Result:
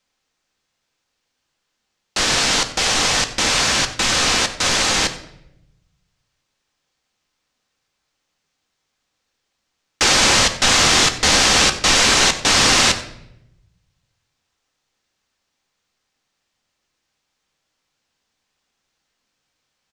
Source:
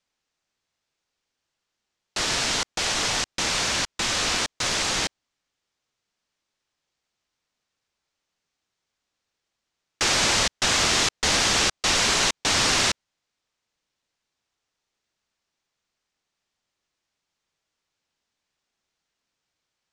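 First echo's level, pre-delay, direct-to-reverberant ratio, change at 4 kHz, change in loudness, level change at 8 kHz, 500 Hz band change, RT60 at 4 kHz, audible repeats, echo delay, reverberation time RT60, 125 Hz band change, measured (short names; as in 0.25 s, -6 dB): -18.5 dB, 4 ms, 6.5 dB, +7.0 dB, +7.0 dB, +7.0 dB, +7.0 dB, 0.60 s, 1, 92 ms, 0.80 s, +7.0 dB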